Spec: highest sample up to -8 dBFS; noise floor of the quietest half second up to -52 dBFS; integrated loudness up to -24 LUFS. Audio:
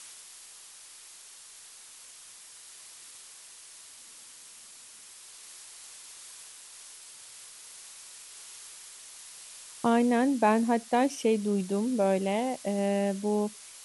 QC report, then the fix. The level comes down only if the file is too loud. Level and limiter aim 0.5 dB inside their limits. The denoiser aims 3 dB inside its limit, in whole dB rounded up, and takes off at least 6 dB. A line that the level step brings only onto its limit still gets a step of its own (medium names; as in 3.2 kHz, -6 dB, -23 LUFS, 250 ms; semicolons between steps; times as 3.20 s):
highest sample -13.0 dBFS: pass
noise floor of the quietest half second -50 dBFS: fail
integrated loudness -27.5 LUFS: pass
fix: noise reduction 6 dB, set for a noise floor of -50 dBFS